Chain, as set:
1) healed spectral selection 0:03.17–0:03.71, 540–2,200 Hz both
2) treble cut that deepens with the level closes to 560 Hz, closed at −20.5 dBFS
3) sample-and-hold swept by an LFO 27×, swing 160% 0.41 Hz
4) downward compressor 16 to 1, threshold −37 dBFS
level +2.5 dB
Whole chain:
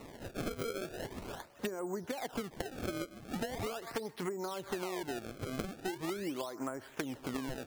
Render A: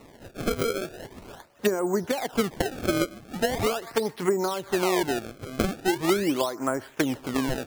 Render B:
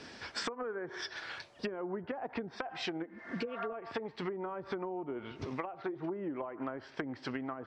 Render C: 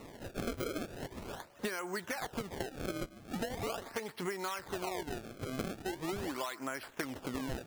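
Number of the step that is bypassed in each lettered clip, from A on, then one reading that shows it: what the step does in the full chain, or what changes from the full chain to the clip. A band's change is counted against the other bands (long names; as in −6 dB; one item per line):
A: 4, average gain reduction 9.0 dB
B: 3, change in crest factor −1.5 dB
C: 2, 2 kHz band +2.0 dB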